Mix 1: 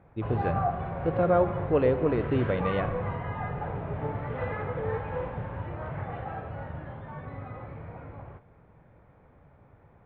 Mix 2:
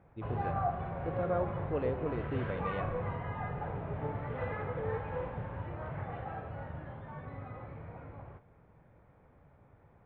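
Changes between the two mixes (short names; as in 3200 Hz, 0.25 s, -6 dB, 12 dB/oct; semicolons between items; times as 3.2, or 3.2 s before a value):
speech -10.5 dB; background -4.5 dB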